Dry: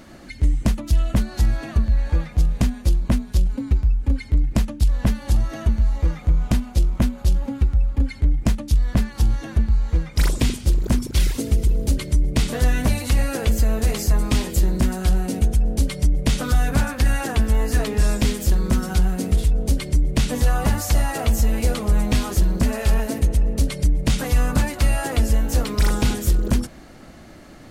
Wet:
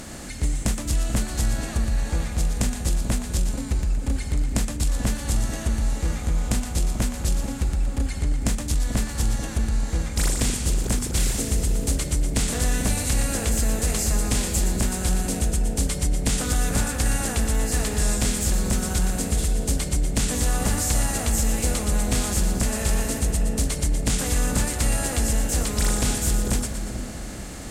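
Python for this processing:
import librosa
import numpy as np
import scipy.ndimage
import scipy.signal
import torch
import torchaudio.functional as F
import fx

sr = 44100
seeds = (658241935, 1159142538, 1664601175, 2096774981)

y = fx.bin_compress(x, sr, power=0.6)
y = fx.peak_eq(y, sr, hz=8100.0, db=12.0, octaves=0.95)
y = fx.echo_split(y, sr, split_hz=790.0, low_ms=438, high_ms=118, feedback_pct=52, wet_db=-8.5)
y = y * 10.0 ** (-7.5 / 20.0)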